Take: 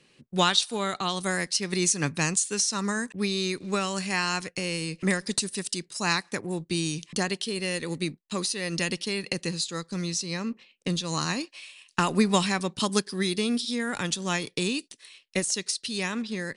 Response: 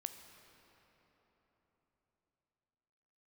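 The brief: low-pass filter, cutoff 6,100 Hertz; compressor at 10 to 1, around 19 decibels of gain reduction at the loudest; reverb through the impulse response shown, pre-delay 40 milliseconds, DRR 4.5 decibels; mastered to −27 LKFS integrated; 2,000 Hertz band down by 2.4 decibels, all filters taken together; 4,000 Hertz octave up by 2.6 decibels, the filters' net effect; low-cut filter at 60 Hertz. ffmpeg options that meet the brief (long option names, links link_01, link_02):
-filter_complex "[0:a]highpass=60,lowpass=6100,equalizer=frequency=2000:width_type=o:gain=-4.5,equalizer=frequency=4000:width_type=o:gain=5,acompressor=threshold=-34dB:ratio=10,asplit=2[link_01][link_02];[1:a]atrim=start_sample=2205,adelay=40[link_03];[link_02][link_03]afir=irnorm=-1:irlink=0,volume=-2dB[link_04];[link_01][link_04]amix=inputs=2:normalize=0,volume=10dB"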